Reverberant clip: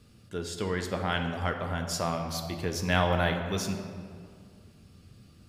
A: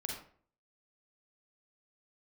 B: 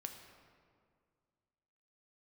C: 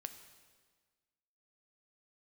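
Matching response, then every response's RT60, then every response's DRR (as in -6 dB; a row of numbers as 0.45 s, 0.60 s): B; 0.50 s, 2.1 s, 1.5 s; -0.5 dB, 4.0 dB, 8.0 dB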